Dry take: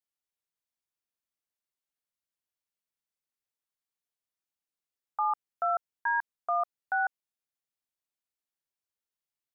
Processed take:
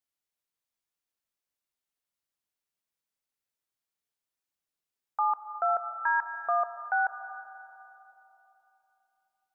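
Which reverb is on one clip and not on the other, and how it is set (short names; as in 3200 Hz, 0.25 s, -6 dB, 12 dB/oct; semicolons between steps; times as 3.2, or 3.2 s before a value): digital reverb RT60 3.4 s, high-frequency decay 0.45×, pre-delay 95 ms, DRR 10 dB; gain +1.5 dB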